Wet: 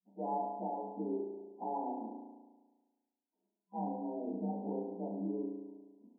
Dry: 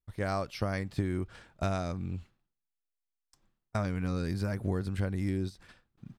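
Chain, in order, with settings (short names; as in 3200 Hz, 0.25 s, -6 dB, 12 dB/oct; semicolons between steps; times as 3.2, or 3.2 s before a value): inharmonic rescaling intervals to 123%; spring tank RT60 1.3 s, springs 35 ms, chirp 50 ms, DRR 1 dB; FFT band-pass 190–1000 Hz; gain -2 dB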